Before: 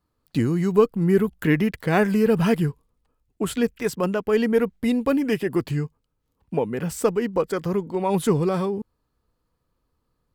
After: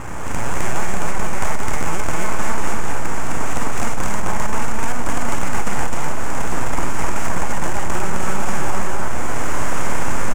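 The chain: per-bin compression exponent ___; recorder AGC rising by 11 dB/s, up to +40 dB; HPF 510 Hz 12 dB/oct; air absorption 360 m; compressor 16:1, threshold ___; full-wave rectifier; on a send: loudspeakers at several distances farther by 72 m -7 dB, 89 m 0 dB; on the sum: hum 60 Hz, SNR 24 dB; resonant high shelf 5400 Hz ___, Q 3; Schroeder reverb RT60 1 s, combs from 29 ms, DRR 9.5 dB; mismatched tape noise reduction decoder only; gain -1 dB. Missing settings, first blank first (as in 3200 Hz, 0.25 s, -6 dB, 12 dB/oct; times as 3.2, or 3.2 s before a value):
0.2, -18 dBFS, +11 dB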